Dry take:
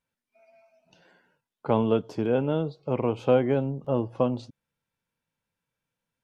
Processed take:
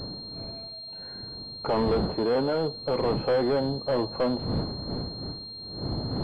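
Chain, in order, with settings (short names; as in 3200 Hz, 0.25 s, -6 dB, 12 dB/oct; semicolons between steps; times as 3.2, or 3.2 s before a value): wind noise 130 Hz -32 dBFS; overdrive pedal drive 27 dB, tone 1500 Hz, clips at -9 dBFS; pulse-width modulation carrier 4200 Hz; gain -7 dB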